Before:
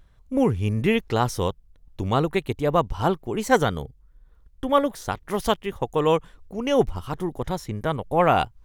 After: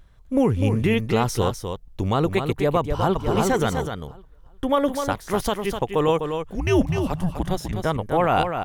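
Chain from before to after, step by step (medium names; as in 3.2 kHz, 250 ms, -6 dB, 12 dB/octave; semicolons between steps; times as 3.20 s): 6.55–7.73 s: frequency shift -180 Hz; peak limiter -13 dBFS, peak gain reduction 10 dB; delay 252 ms -7 dB; 2.79–3.19 s: echo throw 360 ms, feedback 25%, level -2.5 dB; trim +3 dB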